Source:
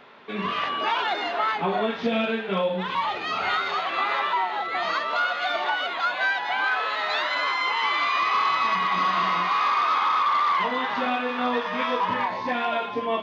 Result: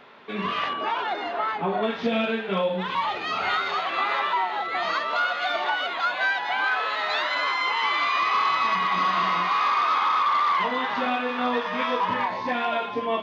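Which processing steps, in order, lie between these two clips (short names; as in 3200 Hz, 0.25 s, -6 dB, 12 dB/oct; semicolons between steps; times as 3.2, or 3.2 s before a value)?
0.73–1.83 high shelf 2100 Hz -9 dB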